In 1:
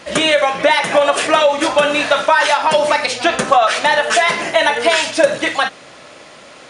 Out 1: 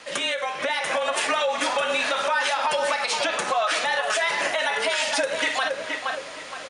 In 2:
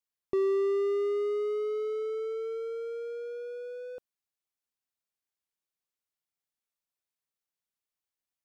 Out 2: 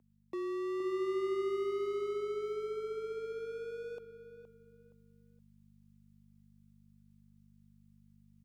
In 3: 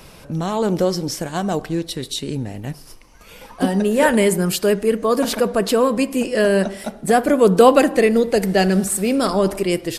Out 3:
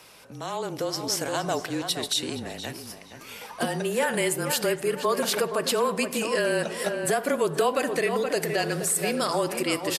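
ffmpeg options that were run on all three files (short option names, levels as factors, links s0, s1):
-filter_complex "[0:a]asplit=2[s0][s1];[s1]adelay=469,lowpass=f=2700:p=1,volume=0.299,asplit=2[s2][s3];[s3]adelay=469,lowpass=f=2700:p=1,volume=0.31,asplit=2[s4][s5];[s5]adelay=469,lowpass=f=2700:p=1,volume=0.31[s6];[s2][s4][s6]amix=inputs=3:normalize=0[s7];[s0][s7]amix=inputs=2:normalize=0,acompressor=threshold=0.112:ratio=3,aeval=exprs='val(0)+0.00631*(sin(2*PI*50*n/s)+sin(2*PI*2*50*n/s)/2+sin(2*PI*3*50*n/s)/3+sin(2*PI*4*50*n/s)/4+sin(2*PI*5*50*n/s)/5)':c=same,afreqshift=-27,highpass=f=780:p=1,dynaudnorm=f=200:g=9:m=2.24,alimiter=limit=0.316:level=0:latency=1:release=88,volume=0.631"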